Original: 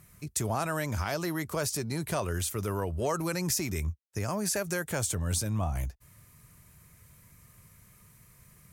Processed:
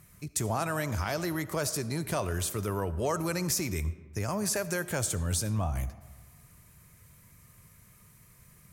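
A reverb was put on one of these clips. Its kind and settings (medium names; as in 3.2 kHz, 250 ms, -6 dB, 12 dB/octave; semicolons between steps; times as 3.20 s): algorithmic reverb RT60 1.4 s, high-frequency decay 0.5×, pre-delay 30 ms, DRR 14.5 dB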